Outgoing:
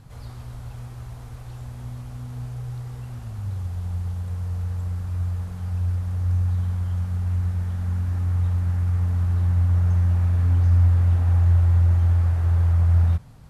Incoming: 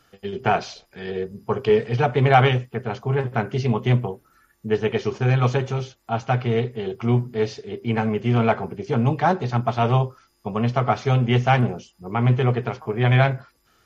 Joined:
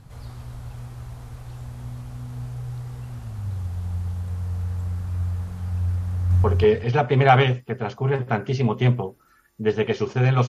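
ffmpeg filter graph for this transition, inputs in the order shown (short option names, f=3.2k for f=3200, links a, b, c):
-filter_complex "[0:a]apad=whole_dur=10.48,atrim=end=10.48,atrim=end=6.442[a];[1:a]atrim=start=1.488:end=5.53[b];[a][b]acrossfade=d=0.004:c1=hsin:c2=hsin,asplit=2[c][d];[d]afade=t=in:st=6.1:d=0.01,afade=t=out:st=6.44:d=0.01,aecho=0:1:200|400|600:0.944061|0.188812|0.0377624[e];[c][e]amix=inputs=2:normalize=0"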